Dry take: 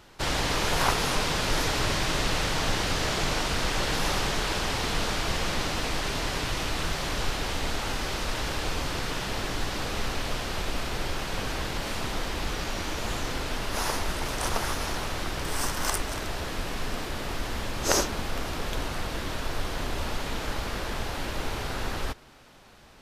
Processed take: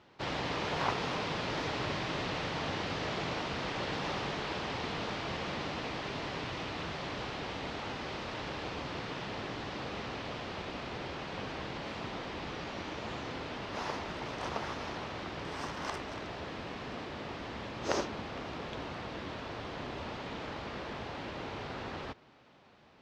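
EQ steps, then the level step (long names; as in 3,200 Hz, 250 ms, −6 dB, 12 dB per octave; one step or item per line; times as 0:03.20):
high-pass filter 110 Hz 12 dB per octave
high-frequency loss of the air 190 metres
parametric band 1,500 Hz −3 dB 0.42 octaves
−5.0 dB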